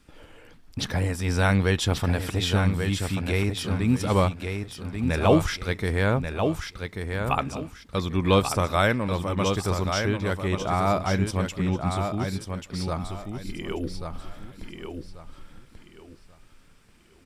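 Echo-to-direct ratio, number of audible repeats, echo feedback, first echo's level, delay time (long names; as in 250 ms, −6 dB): −5.5 dB, 3, 27%, −6.0 dB, 1,137 ms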